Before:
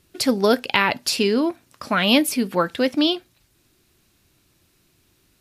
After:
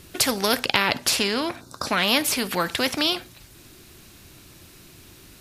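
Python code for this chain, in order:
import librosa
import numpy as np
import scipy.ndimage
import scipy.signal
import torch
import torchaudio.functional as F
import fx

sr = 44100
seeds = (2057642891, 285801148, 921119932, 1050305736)

y = fx.spec_box(x, sr, start_s=1.61, length_s=0.25, low_hz=1600.0, high_hz=3500.0, gain_db=-17)
y = fx.high_shelf(y, sr, hz=11000.0, db=-11.5, at=(0.63, 2.37))
y = fx.spectral_comp(y, sr, ratio=2.0)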